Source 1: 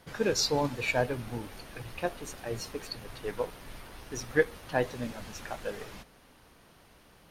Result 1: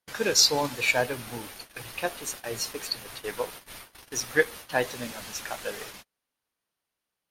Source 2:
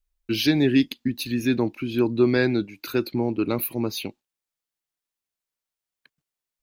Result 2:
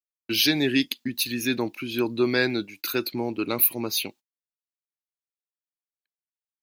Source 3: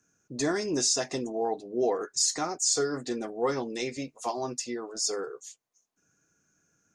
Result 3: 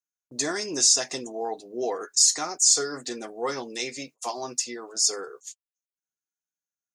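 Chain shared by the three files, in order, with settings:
gate -44 dBFS, range -32 dB; tilt EQ +2.5 dB/octave; peak normalisation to -6 dBFS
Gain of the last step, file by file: +3.5 dB, 0.0 dB, +0.5 dB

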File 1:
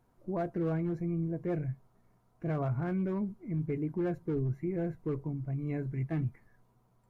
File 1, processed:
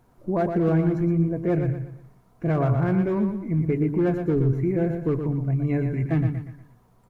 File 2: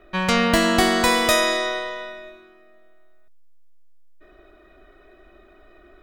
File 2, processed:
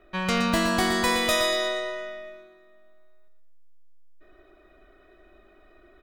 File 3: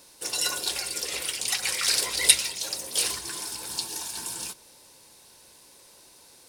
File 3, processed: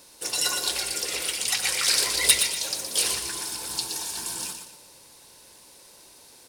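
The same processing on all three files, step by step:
hard clipper -11 dBFS; on a send: feedback delay 119 ms, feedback 36%, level -7 dB; on the sum: normalise loudness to -24 LUFS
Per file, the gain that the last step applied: +9.5 dB, -5.5 dB, +1.5 dB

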